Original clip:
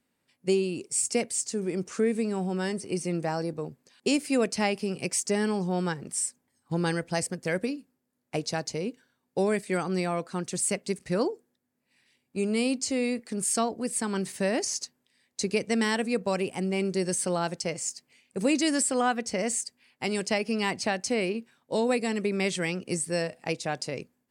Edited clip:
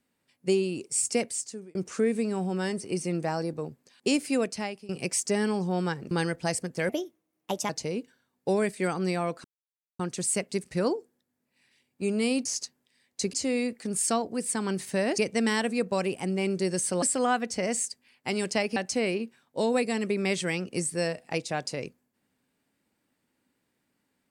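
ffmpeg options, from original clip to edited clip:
-filter_complex "[0:a]asplit=12[a][b][c][d][e][f][g][h][i][j][k][l];[a]atrim=end=1.75,asetpts=PTS-STARTPTS,afade=t=out:st=1.22:d=0.53[m];[b]atrim=start=1.75:end=4.89,asetpts=PTS-STARTPTS,afade=t=in:d=0.004:c=hsin,afade=t=out:st=2.51:d=0.63:silence=0.1[n];[c]atrim=start=4.89:end=6.112,asetpts=PTS-STARTPTS,afade=t=in:d=0.004:c=hsin:silence=0.1[o];[d]atrim=start=6.788:end=7.574[p];[e]atrim=start=7.57:end=8.59,asetpts=PTS-STARTPTS,asetrate=56007,aresample=44100[q];[f]atrim=start=8.586:end=10.34,asetpts=PTS-STARTPTS,afade=t=out:st=1.75:d=0.004:c=hsin,apad=pad_dur=0.55[r];[g]atrim=start=10.34:end=12.802,asetpts=PTS-STARTPTS,afade=t=in:d=0.004:c=hsin[s];[h]atrim=start=14.648:end=15.532[t];[i]atrim=start=12.798:end=14.652[u];[j]atrim=start=15.528:end=17.372[v];[k]atrim=start=18.778:end=20.522[w];[l]atrim=start=20.908[x];[m][n][o]concat=n=3:v=0:a=1[y];[y][p]acrossfade=d=0.004:c1=hsin:c2=hsin[z];[z][q]acrossfade=d=0.004:c1=hsin:c2=hsin[aa];[r][s]concat=n=2:v=0:a=1[ab];[aa][ab]acrossfade=d=0.004:c1=hsin:c2=hsin[ac];[ac][t]acrossfade=d=0.004:c1=hsin:c2=hsin[ad];[ad][u]acrossfade=d=0.004:c1=hsin:c2=hsin[ae];[ae][v]acrossfade=d=0.004:c1=hsin:c2=hsin[af];[af][w]acrossfade=d=0.004:c1=hsin:c2=hsin[ag];[ag][x]acrossfade=d=0.004:c1=hsin:c2=hsin"

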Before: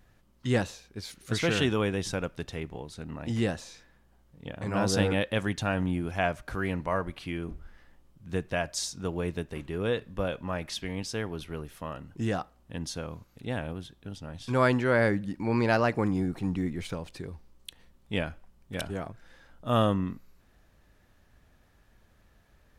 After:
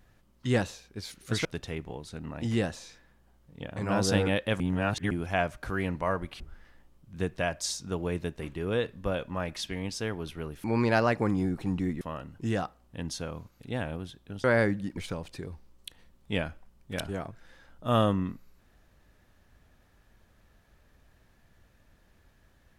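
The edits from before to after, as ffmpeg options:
-filter_complex "[0:a]asplit=9[a][b][c][d][e][f][g][h][i];[a]atrim=end=1.452[j];[b]atrim=start=2.298:end=5.452[k];[c]atrim=start=5.448:end=5.962,asetpts=PTS-STARTPTS,areverse[l];[d]atrim=start=5.958:end=7.252[m];[e]atrim=start=7.528:end=11.772[n];[f]atrim=start=15.408:end=16.782[o];[g]atrim=start=11.768:end=14.202[p];[h]atrim=start=14.878:end=15.412[q];[i]atrim=start=16.778[r];[j][k]acrossfade=d=0.004:c1=hsin:c2=hsin[s];[s][l]acrossfade=d=0.004:c1=hsin:c2=hsin[t];[t][m]acrossfade=d=0.004:c1=hsin:c2=hsin[u];[u][n]acrossfade=d=0.004:c1=hsin:c2=hsin[v];[v][o]acrossfade=d=0.004:c1=hsin:c2=hsin[w];[w][p]acrossfade=d=0.004:c1=hsin:c2=hsin[x];[x][q]acrossfade=d=0.004:c1=hsin:c2=hsin[y];[y][r]acrossfade=d=0.004:c1=hsin:c2=hsin"

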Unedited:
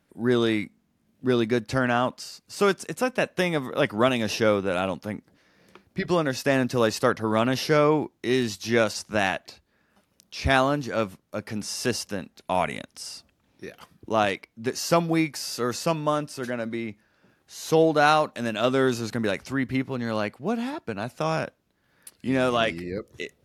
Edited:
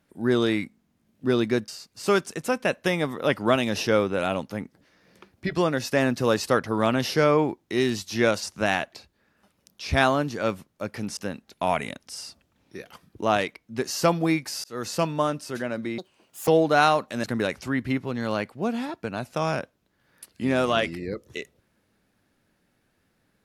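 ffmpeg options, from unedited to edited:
-filter_complex "[0:a]asplit=7[a][b][c][d][e][f][g];[a]atrim=end=1.682[h];[b]atrim=start=2.208:end=11.702[i];[c]atrim=start=12.048:end=15.52,asetpts=PTS-STARTPTS,afade=t=out:st=3.468:d=0.004:c=hsin[j];[d]atrim=start=15.52:end=16.864,asetpts=PTS-STARTPTS,afade=t=in:d=0.28[k];[e]atrim=start=16.86:end=17.73,asetpts=PTS-STARTPTS,asetrate=77175,aresample=44100[l];[f]atrim=start=17.726:end=18.492[m];[g]atrim=start=19.078[n];[h][i]acrossfade=d=0.004:c1=hsin:c2=hsin[o];[j][k]concat=n=2:v=0:a=1[p];[o][p]acrossfade=d=0.004:c1=hsin:c2=hsin[q];[q][l]acrossfade=d=0.004:c1=hsin:c2=hsin[r];[r][m]acrossfade=d=0.004:c1=hsin:c2=hsin[s];[s][n]acrossfade=d=0.004:c1=hsin:c2=hsin"

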